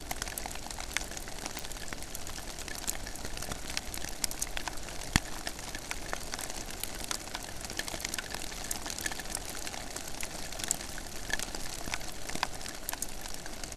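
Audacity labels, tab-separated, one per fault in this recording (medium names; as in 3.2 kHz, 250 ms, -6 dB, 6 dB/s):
1.590000	1.590000	pop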